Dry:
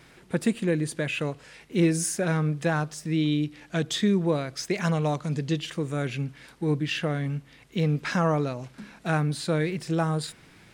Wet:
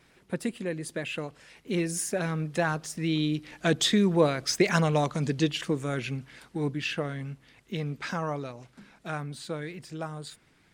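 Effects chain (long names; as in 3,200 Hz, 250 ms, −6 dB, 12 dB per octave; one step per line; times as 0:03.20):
source passing by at 0:04.43, 10 m/s, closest 13 metres
harmonic and percussive parts rebalanced percussive +6 dB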